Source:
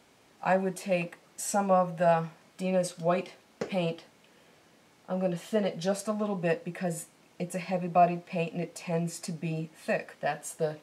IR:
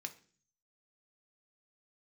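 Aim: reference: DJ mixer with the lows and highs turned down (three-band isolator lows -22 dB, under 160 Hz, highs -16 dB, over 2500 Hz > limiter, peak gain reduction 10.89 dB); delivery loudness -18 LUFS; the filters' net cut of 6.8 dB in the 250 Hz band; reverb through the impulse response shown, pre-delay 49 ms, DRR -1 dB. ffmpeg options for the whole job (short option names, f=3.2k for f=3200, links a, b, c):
-filter_complex "[0:a]equalizer=f=250:t=o:g=-6.5,asplit=2[a][b];[1:a]atrim=start_sample=2205,adelay=49[c];[b][c]afir=irnorm=-1:irlink=0,volume=3.5dB[d];[a][d]amix=inputs=2:normalize=0,acrossover=split=160 2500:gain=0.0794 1 0.158[e][f][g];[e][f][g]amix=inputs=3:normalize=0,volume=15dB,alimiter=limit=-5.5dB:level=0:latency=1"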